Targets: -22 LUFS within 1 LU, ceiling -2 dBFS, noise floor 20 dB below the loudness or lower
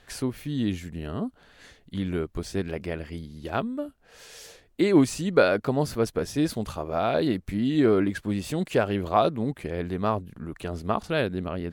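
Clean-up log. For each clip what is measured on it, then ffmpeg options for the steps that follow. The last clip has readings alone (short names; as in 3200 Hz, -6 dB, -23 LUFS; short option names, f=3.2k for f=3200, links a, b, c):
loudness -27.0 LUFS; peak -6.0 dBFS; loudness target -22.0 LUFS
-> -af "volume=5dB,alimiter=limit=-2dB:level=0:latency=1"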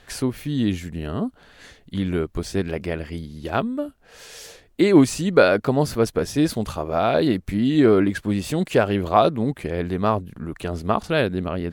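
loudness -22.0 LUFS; peak -2.0 dBFS; noise floor -54 dBFS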